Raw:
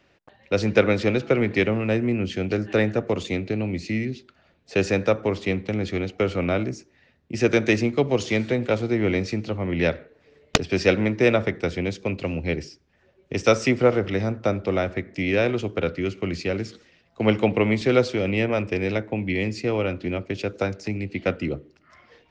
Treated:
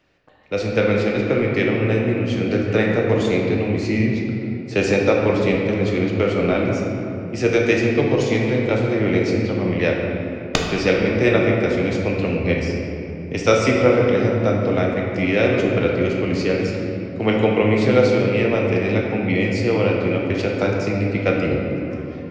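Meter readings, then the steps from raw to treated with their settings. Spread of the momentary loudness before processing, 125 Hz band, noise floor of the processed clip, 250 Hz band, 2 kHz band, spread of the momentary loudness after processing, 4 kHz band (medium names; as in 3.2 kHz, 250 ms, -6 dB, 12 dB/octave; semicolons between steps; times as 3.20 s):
8 LU, +5.5 dB, -30 dBFS, +5.0 dB, +4.0 dB, 7 LU, +2.5 dB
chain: gain riding within 3 dB 2 s; simulated room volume 140 m³, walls hard, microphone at 0.49 m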